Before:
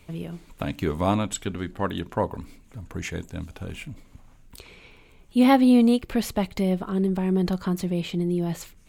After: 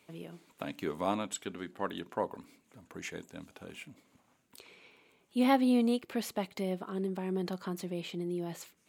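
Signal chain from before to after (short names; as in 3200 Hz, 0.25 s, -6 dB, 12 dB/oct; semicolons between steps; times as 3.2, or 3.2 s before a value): HPF 240 Hz 12 dB/oct; gain -7.5 dB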